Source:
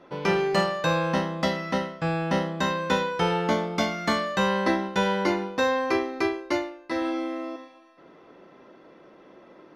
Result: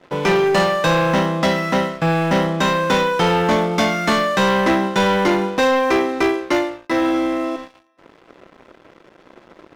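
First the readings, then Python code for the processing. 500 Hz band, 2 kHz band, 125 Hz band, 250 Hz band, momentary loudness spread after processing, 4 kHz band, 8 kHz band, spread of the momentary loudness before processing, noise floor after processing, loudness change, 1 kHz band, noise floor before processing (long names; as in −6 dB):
+8.5 dB, +8.0 dB, +8.0 dB, +8.5 dB, 4 LU, +8.0 dB, +9.0 dB, 6 LU, −52 dBFS, +8.0 dB, +8.5 dB, −53 dBFS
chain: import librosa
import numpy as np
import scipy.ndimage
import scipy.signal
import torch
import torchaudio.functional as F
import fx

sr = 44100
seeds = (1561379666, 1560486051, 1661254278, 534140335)

y = scipy.signal.sosfilt(scipy.signal.butter(2, 95.0, 'highpass', fs=sr, output='sos'), x)
y = fx.notch(y, sr, hz=4500.0, q=6.6)
y = fx.leveller(y, sr, passes=3)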